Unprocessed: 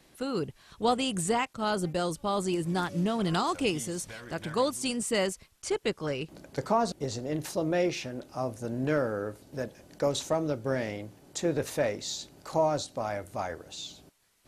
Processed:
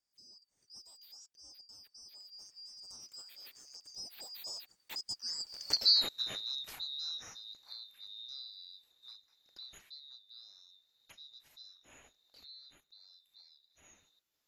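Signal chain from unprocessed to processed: band-swap scrambler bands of 4000 Hz; recorder AGC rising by 19 dB/s; Doppler pass-by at 5.82, 45 m/s, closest 9.7 m

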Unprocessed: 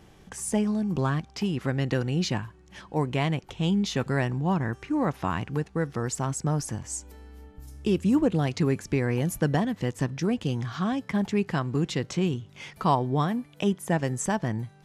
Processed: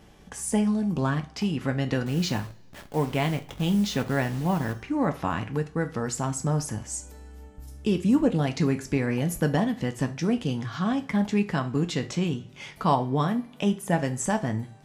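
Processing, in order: 2.06–4.73 level-crossing sampler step -38.5 dBFS; two-slope reverb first 0.32 s, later 2 s, from -27 dB, DRR 6 dB

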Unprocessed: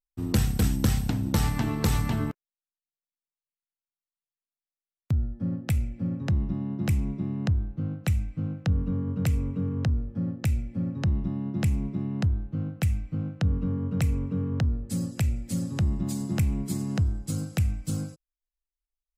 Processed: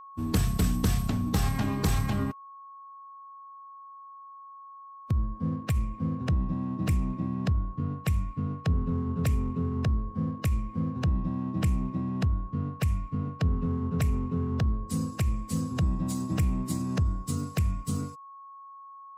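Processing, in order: sample leveller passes 1; formant-preserving pitch shift -1.5 st; whine 1100 Hz -40 dBFS; gain -4 dB

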